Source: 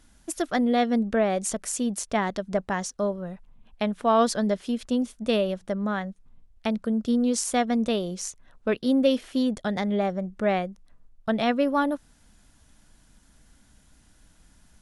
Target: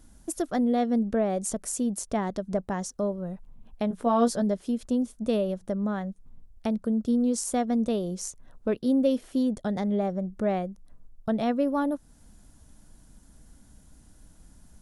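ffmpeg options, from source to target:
ffmpeg -i in.wav -filter_complex "[0:a]equalizer=frequency=2500:width_type=o:width=2.6:gain=-11,asplit=2[link_01][link_02];[link_02]acompressor=threshold=-38dB:ratio=6,volume=1.5dB[link_03];[link_01][link_03]amix=inputs=2:normalize=0,asettb=1/sr,asplit=3[link_04][link_05][link_06];[link_04]atrim=end=3.894[link_07];[link_05]atrim=start=3.89:end=4.42,asetpts=PTS-STARTPTS,afade=type=in:duration=0.004:curve=qsin,afade=type=out:start_time=0.526:duration=0.004:curve=qsin,asplit=2[link_08][link_09];[link_09]adelay=17,volume=-5dB[link_10];[link_08][link_10]amix=inputs=2:normalize=0,atrim=end_sample=23373[link_11];[link_06]atrim=start=4.416[link_12];[link_07][link_11]acrossfade=duration=0.004:curve1=hsin:curve2=qsin[link_13];[link_13][link_12]acrossfade=duration=0.004:curve1=qsin:curve2=hsin,volume=-2dB" out.wav

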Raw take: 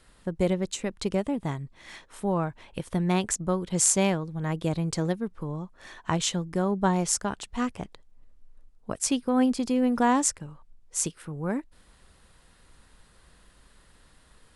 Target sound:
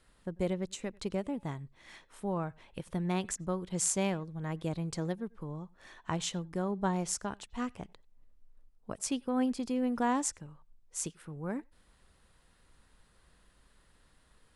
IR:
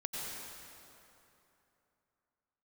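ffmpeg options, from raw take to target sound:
-filter_complex "[0:a]asplit=2[link_01][link_02];[1:a]atrim=start_sample=2205,atrim=end_sample=4410,lowpass=4400[link_03];[link_02][link_03]afir=irnorm=-1:irlink=0,volume=-14dB[link_04];[link_01][link_04]amix=inputs=2:normalize=0,volume=-8.5dB"

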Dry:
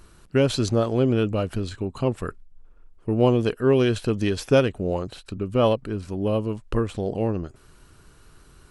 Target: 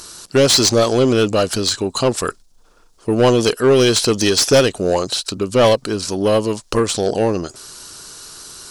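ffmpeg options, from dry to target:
ffmpeg -i in.wav -filter_complex "[0:a]highshelf=frequency=3500:width_type=q:width=1.5:gain=14,asplit=2[link_01][link_02];[link_02]highpass=frequency=720:poles=1,volume=22dB,asoftclip=type=tanh:threshold=-2dB[link_03];[link_01][link_03]amix=inputs=2:normalize=0,lowpass=frequency=4100:poles=1,volume=-6dB" out.wav

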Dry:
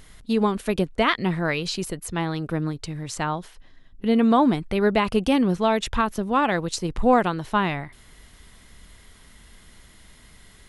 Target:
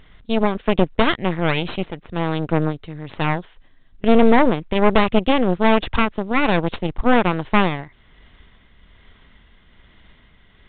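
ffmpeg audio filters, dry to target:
ffmpeg -i in.wav -af "tremolo=f=1.2:d=0.37,aeval=exprs='0.398*(cos(1*acos(clip(val(0)/0.398,-1,1)))-cos(1*PI/2))+0.00447*(cos(3*acos(clip(val(0)/0.398,-1,1)))-cos(3*PI/2))+0.178*(cos(4*acos(clip(val(0)/0.398,-1,1)))-cos(4*PI/2))+0.0355*(cos(8*acos(clip(val(0)/0.398,-1,1)))-cos(8*PI/2))':channel_layout=same,volume=1.5dB" -ar 8000 -c:a pcm_mulaw out.wav

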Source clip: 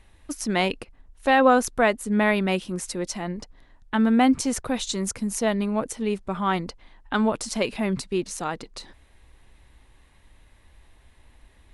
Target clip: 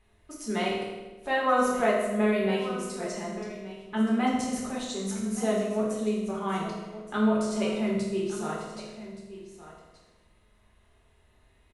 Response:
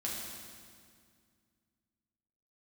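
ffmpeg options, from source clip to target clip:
-filter_complex "[0:a]equalizer=frequency=860:width=0.34:gain=3,aecho=1:1:1174:0.188[link_01];[1:a]atrim=start_sample=2205,asetrate=83790,aresample=44100[link_02];[link_01][link_02]afir=irnorm=-1:irlink=0,volume=-5dB"

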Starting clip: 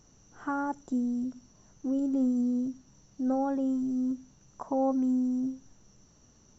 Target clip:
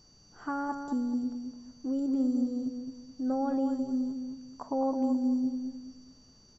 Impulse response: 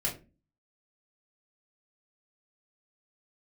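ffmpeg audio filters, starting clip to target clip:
-filter_complex "[0:a]asplit=2[link_01][link_02];[link_02]adelay=213,lowpass=frequency=1500:poles=1,volume=-5.5dB,asplit=2[link_03][link_04];[link_04]adelay=213,lowpass=frequency=1500:poles=1,volume=0.34,asplit=2[link_05][link_06];[link_06]adelay=213,lowpass=frequency=1500:poles=1,volume=0.34,asplit=2[link_07][link_08];[link_08]adelay=213,lowpass=frequency=1500:poles=1,volume=0.34[link_09];[link_01][link_03][link_05][link_07][link_09]amix=inputs=5:normalize=0,aeval=exprs='val(0)+0.00112*sin(2*PI*4600*n/s)':channel_layout=same,volume=-2dB"

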